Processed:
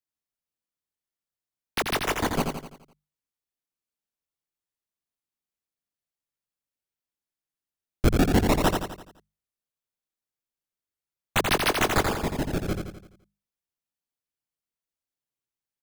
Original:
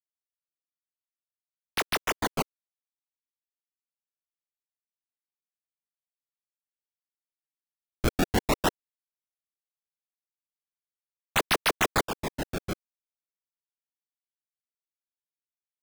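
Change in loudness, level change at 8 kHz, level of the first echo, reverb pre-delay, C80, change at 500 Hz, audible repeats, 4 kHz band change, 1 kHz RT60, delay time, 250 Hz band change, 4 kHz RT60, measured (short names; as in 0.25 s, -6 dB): +3.5 dB, +1.5 dB, -5.0 dB, none, none, +4.5 dB, 5, +1.5 dB, none, 85 ms, +6.0 dB, none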